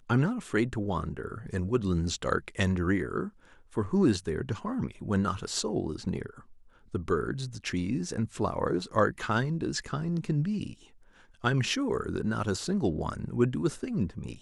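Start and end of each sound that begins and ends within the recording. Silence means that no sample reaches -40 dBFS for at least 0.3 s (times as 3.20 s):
3.73–6.39 s
6.94–10.73 s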